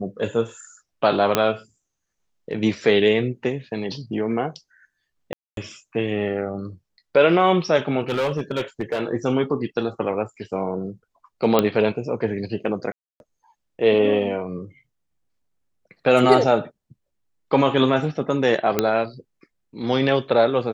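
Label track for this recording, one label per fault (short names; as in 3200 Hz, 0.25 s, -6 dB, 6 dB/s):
1.350000	1.350000	pop -2 dBFS
5.330000	5.570000	gap 0.242 s
8.020000	9.020000	clipped -18.5 dBFS
11.590000	11.590000	pop -4 dBFS
12.920000	13.200000	gap 0.281 s
18.790000	18.790000	pop -4 dBFS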